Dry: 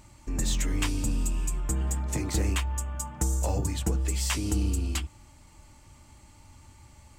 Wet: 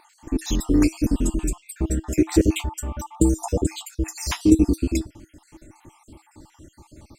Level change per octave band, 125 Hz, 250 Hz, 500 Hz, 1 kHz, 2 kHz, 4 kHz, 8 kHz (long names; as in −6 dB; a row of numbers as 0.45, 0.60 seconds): +2.0, +14.0, +11.5, +3.0, +1.5, +1.5, +1.0 decibels